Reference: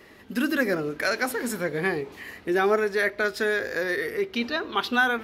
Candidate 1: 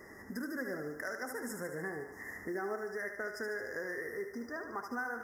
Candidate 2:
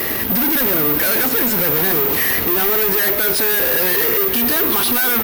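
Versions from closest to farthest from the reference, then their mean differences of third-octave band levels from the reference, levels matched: 1, 2; 8.0, 10.5 dB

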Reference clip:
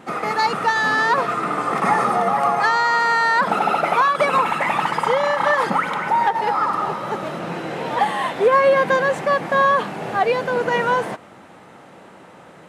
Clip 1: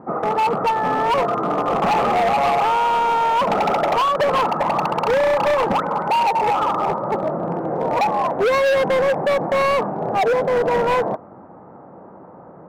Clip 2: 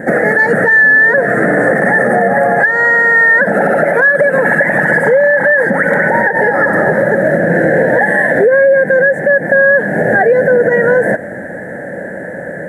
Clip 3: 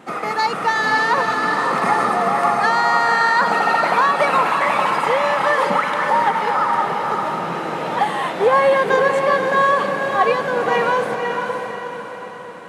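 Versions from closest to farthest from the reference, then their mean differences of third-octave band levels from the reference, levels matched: 3, 1, 2; 3.0, 5.0, 8.5 dB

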